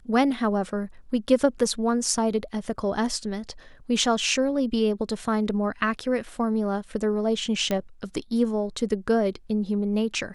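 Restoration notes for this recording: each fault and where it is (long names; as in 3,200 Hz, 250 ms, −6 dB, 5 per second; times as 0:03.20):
0:07.71: click −12 dBFS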